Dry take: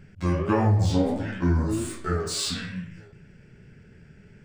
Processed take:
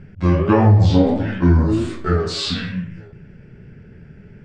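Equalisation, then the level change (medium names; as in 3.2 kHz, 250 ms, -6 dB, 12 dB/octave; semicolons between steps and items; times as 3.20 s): tilt shelf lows +3 dB, about 1.3 kHz; dynamic bell 3.8 kHz, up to +7 dB, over -48 dBFS, Q 0.92; distance through air 120 m; +6.0 dB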